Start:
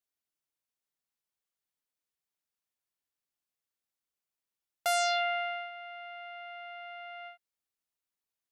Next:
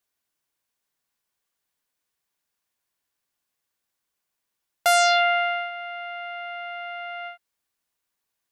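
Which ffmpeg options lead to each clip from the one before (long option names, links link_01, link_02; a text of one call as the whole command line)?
ffmpeg -i in.wav -af "equalizer=frequency=1300:width_type=o:width=0.58:gain=8,bandreject=frequency=1300:width=5.2,volume=9dB" out.wav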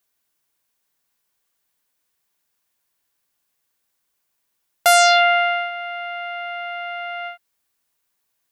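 ffmpeg -i in.wav -af "highshelf=frequency=11000:gain=5.5,volume=5dB" out.wav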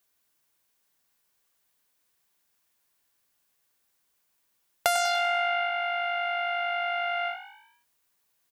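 ffmpeg -i in.wav -filter_complex "[0:a]acompressor=threshold=-22dB:ratio=10,asplit=2[link_01][link_02];[link_02]asplit=5[link_03][link_04][link_05][link_06][link_07];[link_03]adelay=97,afreqshift=51,volume=-12dB[link_08];[link_04]adelay=194,afreqshift=102,volume=-18.4dB[link_09];[link_05]adelay=291,afreqshift=153,volume=-24.8dB[link_10];[link_06]adelay=388,afreqshift=204,volume=-31.1dB[link_11];[link_07]adelay=485,afreqshift=255,volume=-37.5dB[link_12];[link_08][link_09][link_10][link_11][link_12]amix=inputs=5:normalize=0[link_13];[link_01][link_13]amix=inputs=2:normalize=0" out.wav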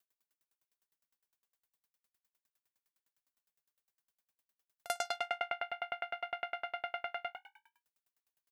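ffmpeg -i in.wav -af "aeval=exprs='val(0)*pow(10,-39*if(lt(mod(9.8*n/s,1),2*abs(9.8)/1000),1-mod(9.8*n/s,1)/(2*abs(9.8)/1000),(mod(9.8*n/s,1)-2*abs(9.8)/1000)/(1-2*abs(9.8)/1000))/20)':channel_layout=same,volume=-2.5dB" out.wav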